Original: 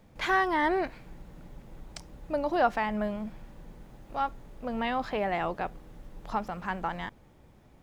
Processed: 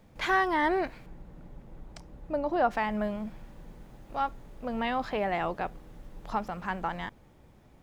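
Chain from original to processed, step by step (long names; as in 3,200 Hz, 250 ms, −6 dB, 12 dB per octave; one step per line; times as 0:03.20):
0:01.06–0:02.71: high-shelf EQ 2,100 Hz −9 dB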